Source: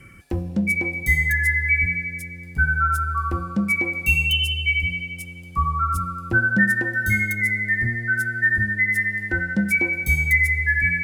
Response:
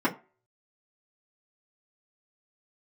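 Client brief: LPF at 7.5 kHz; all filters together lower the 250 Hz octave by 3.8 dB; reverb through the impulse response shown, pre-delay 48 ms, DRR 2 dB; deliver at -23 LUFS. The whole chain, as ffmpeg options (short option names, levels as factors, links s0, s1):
-filter_complex "[0:a]lowpass=7500,equalizer=f=250:t=o:g=-5.5,asplit=2[s0][s1];[1:a]atrim=start_sample=2205,adelay=48[s2];[s1][s2]afir=irnorm=-1:irlink=0,volume=0.188[s3];[s0][s3]amix=inputs=2:normalize=0,volume=0.631"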